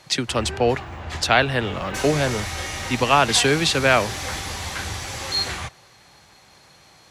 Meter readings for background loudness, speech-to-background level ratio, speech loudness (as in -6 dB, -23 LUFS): -29.0 LUFS, 8.5 dB, -20.5 LUFS